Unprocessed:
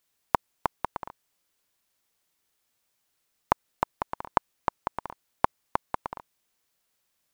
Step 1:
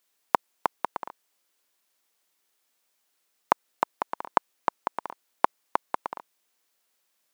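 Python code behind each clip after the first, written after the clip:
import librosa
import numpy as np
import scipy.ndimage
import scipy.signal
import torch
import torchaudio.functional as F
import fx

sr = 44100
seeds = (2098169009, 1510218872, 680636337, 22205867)

y = scipy.signal.sosfilt(scipy.signal.butter(2, 270.0, 'highpass', fs=sr, output='sos'), x)
y = F.gain(torch.from_numpy(y), 2.0).numpy()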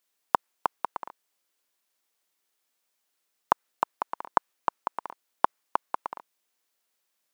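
y = fx.dynamic_eq(x, sr, hz=1300.0, q=0.74, threshold_db=-36.0, ratio=4.0, max_db=5)
y = F.gain(torch.from_numpy(y), -4.0).numpy()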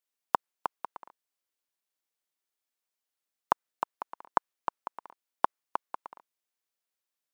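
y = fx.upward_expand(x, sr, threshold_db=-35.0, expansion=1.5)
y = F.gain(torch.from_numpy(y), -3.0).numpy()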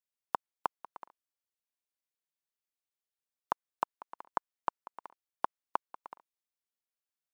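y = fx.level_steps(x, sr, step_db=17)
y = F.gain(torch.from_numpy(y), 5.0).numpy()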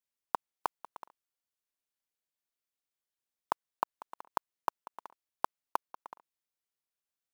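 y = fx.block_float(x, sr, bits=5)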